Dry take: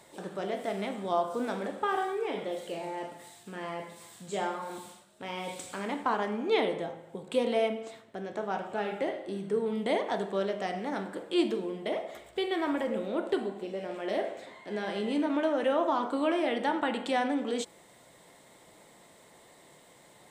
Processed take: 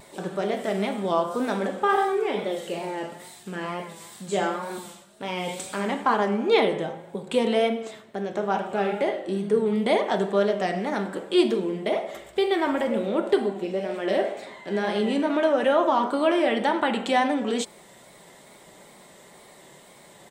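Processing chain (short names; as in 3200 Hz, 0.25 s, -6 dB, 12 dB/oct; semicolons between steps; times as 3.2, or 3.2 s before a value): comb 5.1 ms, depth 33%; wow and flutter 57 cents; gain +6.5 dB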